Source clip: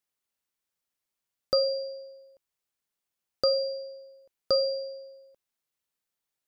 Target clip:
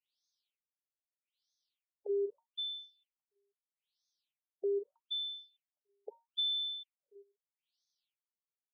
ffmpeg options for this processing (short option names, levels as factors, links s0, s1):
-filter_complex "[0:a]afftdn=nr=19:nf=-44,aecho=1:1:7.5:0.65,adynamicequalizer=threshold=0.00447:dfrequency=770:dqfactor=5.6:tfrequency=770:tqfactor=5.6:attack=5:release=100:ratio=0.375:range=4:mode=boostabove:tftype=bell,acrossover=split=530[s0][s1];[s0]alimiter=level_in=2.11:limit=0.0631:level=0:latency=1:release=85,volume=0.473[s2];[s1]acompressor=threshold=0.0126:ratio=8[s3];[s2][s3]amix=inputs=2:normalize=0,aexciter=amount=12:drive=7.8:freq=3300,asetrate=32667,aresample=44100,asplit=2[s4][s5];[s5]adelay=320,highpass=300,lowpass=3400,asoftclip=type=hard:threshold=0.316,volume=0.0501[s6];[s4][s6]amix=inputs=2:normalize=0,afftfilt=real='re*between(b*sr/1024,500*pow(4700/500,0.5+0.5*sin(2*PI*0.79*pts/sr))/1.41,500*pow(4700/500,0.5+0.5*sin(2*PI*0.79*pts/sr))*1.41)':imag='im*between(b*sr/1024,500*pow(4700/500,0.5+0.5*sin(2*PI*0.79*pts/sr))/1.41,500*pow(4700/500,0.5+0.5*sin(2*PI*0.79*pts/sr))*1.41)':win_size=1024:overlap=0.75,volume=0.891"